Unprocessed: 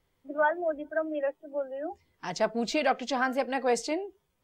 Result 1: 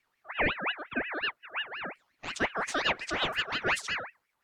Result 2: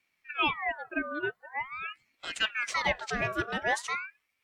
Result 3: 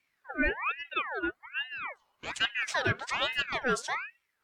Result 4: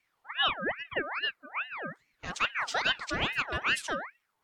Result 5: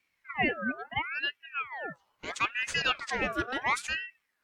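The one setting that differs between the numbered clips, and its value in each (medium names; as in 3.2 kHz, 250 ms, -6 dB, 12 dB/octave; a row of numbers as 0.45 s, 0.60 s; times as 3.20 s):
ring modulator with a swept carrier, at: 5.6 Hz, 0.45 Hz, 1.2 Hz, 2.4 Hz, 0.74 Hz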